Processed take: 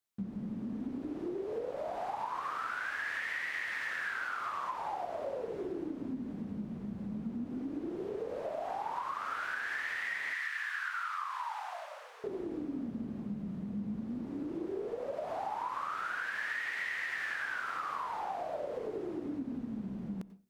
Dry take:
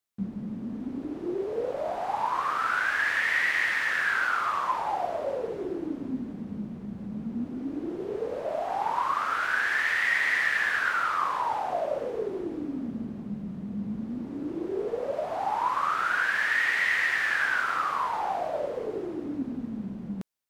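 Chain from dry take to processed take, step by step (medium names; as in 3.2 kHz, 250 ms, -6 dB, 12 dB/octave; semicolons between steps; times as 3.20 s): 10.33–12.24 s: high-pass 1 kHz 24 dB/octave; compression, threshold -32 dBFS, peak gain reduction 10.5 dB; reverberation RT60 0.30 s, pre-delay 86 ms, DRR 15 dB; trim -2.5 dB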